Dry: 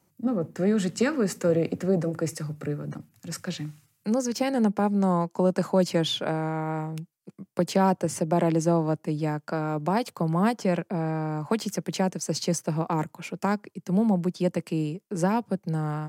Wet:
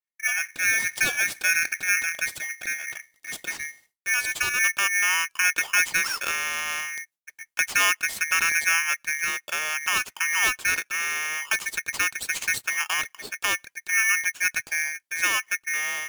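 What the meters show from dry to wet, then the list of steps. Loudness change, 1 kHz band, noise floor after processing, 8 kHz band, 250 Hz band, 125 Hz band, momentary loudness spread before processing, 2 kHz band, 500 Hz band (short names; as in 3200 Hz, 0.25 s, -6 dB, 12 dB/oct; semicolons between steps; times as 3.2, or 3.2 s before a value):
+3.0 dB, -2.5 dB, -77 dBFS, +12.0 dB, -26.0 dB, under -25 dB, 10 LU, +18.5 dB, -19.0 dB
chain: expander -50 dBFS; polarity switched at an audio rate 2000 Hz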